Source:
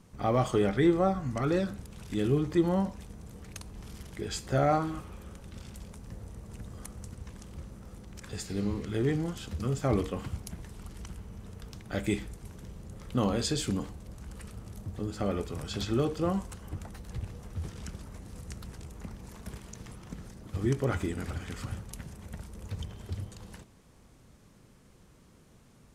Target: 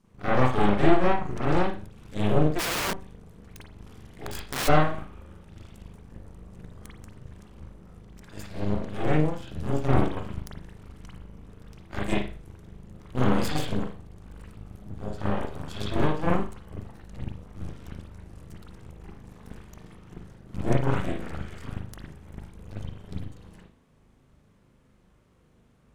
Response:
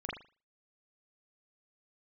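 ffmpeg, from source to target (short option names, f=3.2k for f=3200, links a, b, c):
-filter_complex "[0:a]aeval=exprs='0.211*(cos(1*acos(clip(val(0)/0.211,-1,1)))-cos(1*PI/2))+0.075*(cos(4*acos(clip(val(0)/0.211,-1,1)))-cos(4*PI/2))+0.00266*(cos(5*acos(clip(val(0)/0.211,-1,1)))-cos(5*PI/2))+0.0168*(cos(7*acos(clip(val(0)/0.211,-1,1)))-cos(7*PI/2))+0.0119*(cos(8*acos(clip(val(0)/0.211,-1,1)))-cos(8*PI/2))':c=same[a];[1:a]atrim=start_sample=2205[b];[a][b]afir=irnorm=-1:irlink=0,asplit=3[c][d][e];[c]afade=t=out:st=2.58:d=0.02[f];[d]aeval=exprs='(mod(15*val(0)+1,2)-1)/15':c=same,afade=t=in:st=2.58:d=0.02,afade=t=out:st=4.67:d=0.02[g];[e]afade=t=in:st=4.67:d=0.02[h];[f][g][h]amix=inputs=3:normalize=0"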